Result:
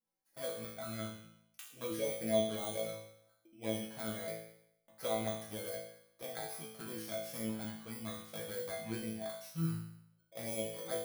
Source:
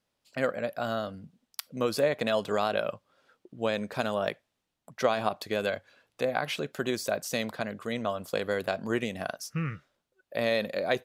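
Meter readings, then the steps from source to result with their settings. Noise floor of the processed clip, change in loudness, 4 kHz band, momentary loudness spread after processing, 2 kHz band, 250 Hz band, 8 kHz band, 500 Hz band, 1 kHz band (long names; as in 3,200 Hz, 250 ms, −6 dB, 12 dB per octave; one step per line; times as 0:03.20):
−76 dBFS, −9.0 dB, −9.0 dB, 12 LU, −15.0 dB, −7.0 dB, −2.0 dB, −10.5 dB, −13.0 dB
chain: samples in bit-reversed order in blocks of 16 samples
flanger swept by the level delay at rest 3.8 ms, full sweep at −23 dBFS
resonators tuned to a chord A2 fifth, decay 0.73 s
level +9.5 dB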